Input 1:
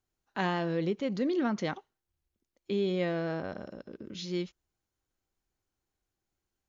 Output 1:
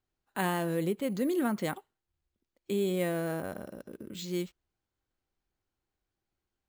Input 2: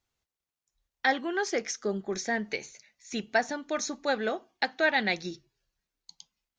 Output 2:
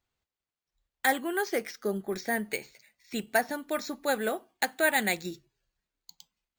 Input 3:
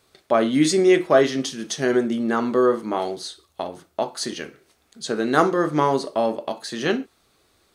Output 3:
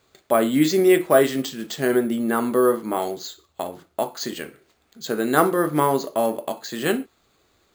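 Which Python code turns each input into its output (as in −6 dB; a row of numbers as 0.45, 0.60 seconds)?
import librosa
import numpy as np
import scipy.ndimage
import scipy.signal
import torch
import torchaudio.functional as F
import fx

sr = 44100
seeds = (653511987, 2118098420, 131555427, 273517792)

y = np.repeat(scipy.signal.resample_poly(x, 1, 4), 4)[:len(x)]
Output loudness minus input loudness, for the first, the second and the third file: 0.0, 0.0, 0.0 LU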